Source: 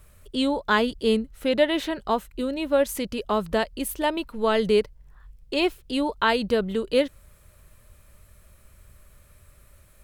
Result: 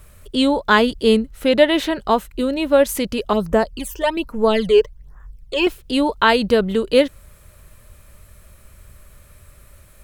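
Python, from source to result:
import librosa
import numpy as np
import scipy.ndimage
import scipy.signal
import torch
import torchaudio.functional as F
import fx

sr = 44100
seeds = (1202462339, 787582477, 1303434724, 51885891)

y = fx.phaser_stages(x, sr, stages=12, low_hz=210.0, high_hz=4100.0, hz=1.2, feedback_pct=25, at=(3.33, 5.67))
y = y * librosa.db_to_amplitude(7.0)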